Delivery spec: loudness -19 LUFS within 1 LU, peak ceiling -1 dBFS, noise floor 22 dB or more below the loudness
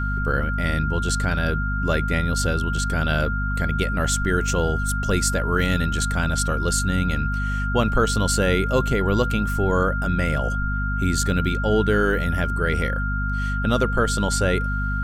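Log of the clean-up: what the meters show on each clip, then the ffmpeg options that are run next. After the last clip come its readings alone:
hum 50 Hz; harmonics up to 250 Hz; hum level -22 dBFS; steady tone 1400 Hz; tone level -27 dBFS; loudness -22.5 LUFS; peak -6.0 dBFS; loudness target -19.0 LUFS
-> -af "bandreject=f=50:t=h:w=6,bandreject=f=100:t=h:w=6,bandreject=f=150:t=h:w=6,bandreject=f=200:t=h:w=6,bandreject=f=250:t=h:w=6"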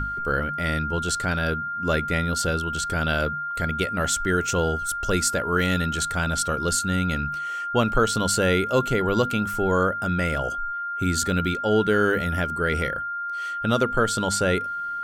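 hum none; steady tone 1400 Hz; tone level -27 dBFS
-> -af "bandreject=f=1.4k:w=30"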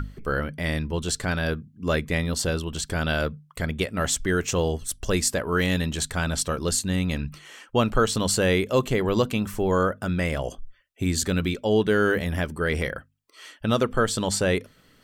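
steady tone none; loudness -25.0 LUFS; peak -8.0 dBFS; loudness target -19.0 LUFS
-> -af "volume=6dB"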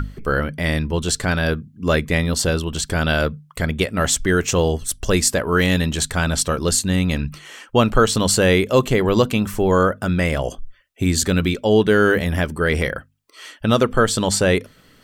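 loudness -19.0 LUFS; peak -2.0 dBFS; noise floor -53 dBFS

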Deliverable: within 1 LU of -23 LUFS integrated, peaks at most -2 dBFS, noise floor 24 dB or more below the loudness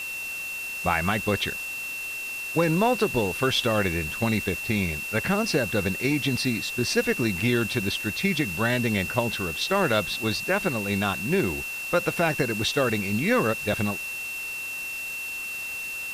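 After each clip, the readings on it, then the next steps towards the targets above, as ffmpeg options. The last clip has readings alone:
steady tone 2700 Hz; tone level -31 dBFS; noise floor -33 dBFS; noise floor target -50 dBFS; loudness -25.5 LUFS; peak -9.0 dBFS; loudness target -23.0 LUFS
-> -af "bandreject=f=2.7k:w=30"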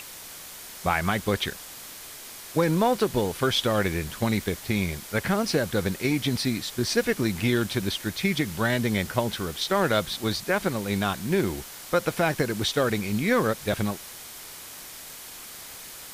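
steady tone none; noise floor -42 dBFS; noise floor target -50 dBFS
-> -af "afftdn=nr=8:nf=-42"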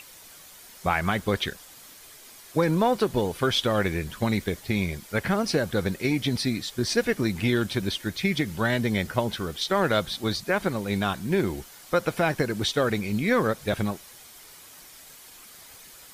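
noise floor -48 dBFS; noise floor target -50 dBFS
-> -af "afftdn=nr=6:nf=-48"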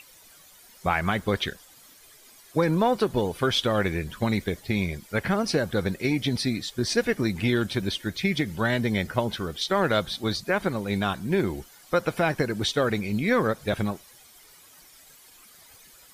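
noise floor -53 dBFS; loudness -26.0 LUFS; peak -9.5 dBFS; loudness target -23.0 LUFS
-> -af "volume=3dB"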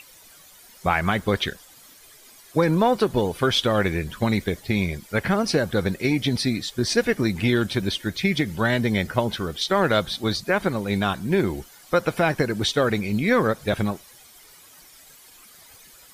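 loudness -23.0 LUFS; peak -6.5 dBFS; noise floor -50 dBFS

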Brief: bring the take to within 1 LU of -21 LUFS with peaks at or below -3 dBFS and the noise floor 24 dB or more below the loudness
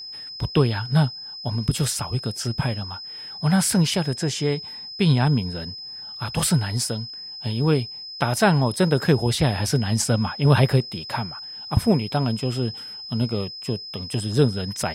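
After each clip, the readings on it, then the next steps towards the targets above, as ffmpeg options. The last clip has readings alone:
steady tone 5100 Hz; tone level -34 dBFS; loudness -23.0 LUFS; peak -3.5 dBFS; loudness target -21.0 LUFS
-> -af "bandreject=f=5.1k:w=30"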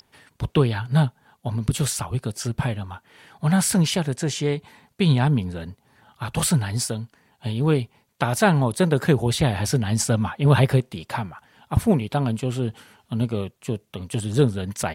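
steady tone none; loudness -23.0 LUFS; peak -3.0 dBFS; loudness target -21.0 LUFS
-> -af "volume=2dB,alimiter=limit=-3dB:level=0:latency=1"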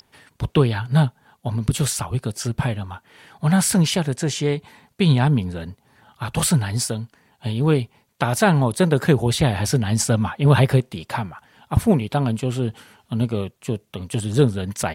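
loudness -21.0 LUFS; peak -3.0 dBFS; noise floor -64 dBFS

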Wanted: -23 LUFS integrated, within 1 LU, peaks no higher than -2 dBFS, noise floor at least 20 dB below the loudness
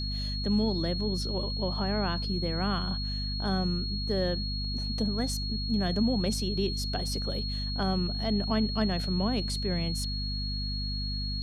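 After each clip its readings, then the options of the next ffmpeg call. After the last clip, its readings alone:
hum 50 Hz; harmonics up to 250 Hz; hum level -31 dBFS; steady tone 4300 Hz; tone level -35 dBFS; loudness -30.0 LUFS; peak -14.5 dBFS; loudness target -23.0 LUFS
-> -af "bandreject=f=50:t=h:w=6,bandreject=f=100:t=h:w=6,bandreject=f=150:t=h:w=6,bandreject=f=200:t=h:w=6,bandreject=f=250:t=h:w=6"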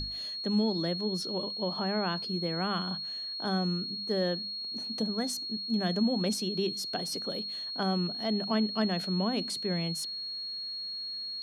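hum none; steady tone 4300 Hz; tone level -35 dBFS
-> -af "bandreject=f=4.3k:w=30"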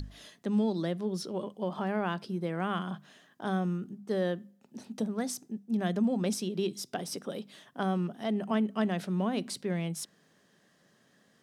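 steady tone none; loudness -33.0 LUFS; peak -16.0 dBFS; loudness target -23.0 LUFS
-> -af "volume=10dB"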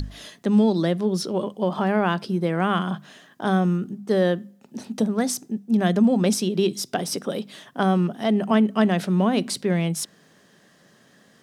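loudness -23.0 LUFS; peak -6.0 dBFS; noise floor -57 dBFS

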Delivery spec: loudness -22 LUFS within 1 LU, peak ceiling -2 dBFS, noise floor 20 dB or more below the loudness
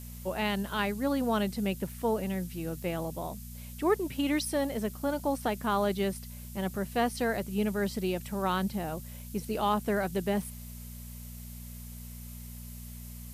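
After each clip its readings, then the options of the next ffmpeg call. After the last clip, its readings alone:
hum 60 Hz; harmonics up to 240 Hz; hum level -41 dBFS; noise floor -44 dBFS; noise floor target -52 dBFS; loudness -31.5 LUFS; peak -15.0 dBFS; loudness target -22.0 LUFS
-> -af "bandreject=f=60:t=h:w=4,bandreject=f=120:t=h:w=4,bandreject=f=180:t=h:w=4,bandreject=f=240:t=h:w=4"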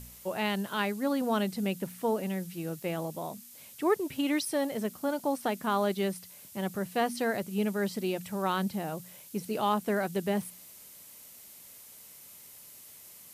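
hum none; noise floor -51 dBFS; noise floor target -52 dBFS
-> -af "afftdn=nr=6:nf=-51"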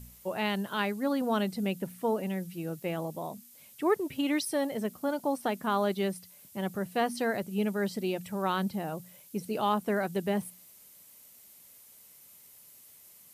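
noise floor -55 dBFS; loudness -31.5 LUFS; peak -15.5 dBFS; loudness target -22.0 LUFS
-> -af "volume=9.5dB"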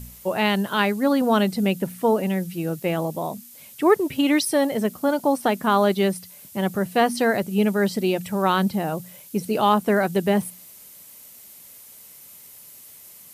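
loudness -22.0 LUFS; peak -6.0 dBFS; noise floor -46 dBFS

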